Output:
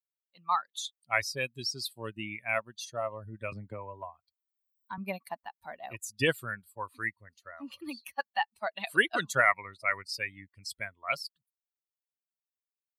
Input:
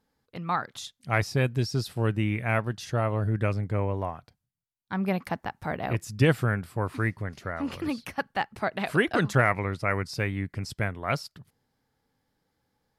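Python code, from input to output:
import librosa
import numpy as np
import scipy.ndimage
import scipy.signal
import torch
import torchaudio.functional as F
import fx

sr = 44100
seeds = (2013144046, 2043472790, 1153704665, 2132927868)

y = fx.bin_expand(x, sr, power=2.0)
y = fx.highpass(y, sr, hz=1200.0, slope=6)
y = fx.band_squash(y, sr, depth_pct=100, at=(3.52, 4.98))
y = F.gain(torch.from_numpy(y), 6.5).numpy()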